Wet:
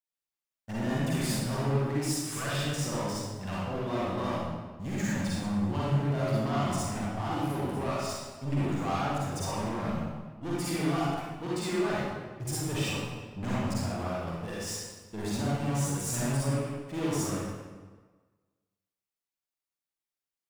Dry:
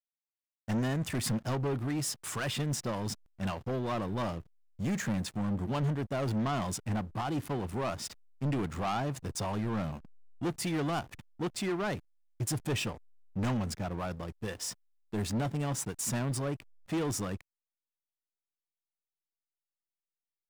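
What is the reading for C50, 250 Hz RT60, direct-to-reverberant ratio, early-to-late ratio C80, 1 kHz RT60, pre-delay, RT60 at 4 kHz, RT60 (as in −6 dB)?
−5.5 dB, 1.4 s, −8.5 dB, −1.5 dB, 1.4 s, 40 ms, 1.1 s, 1.4 s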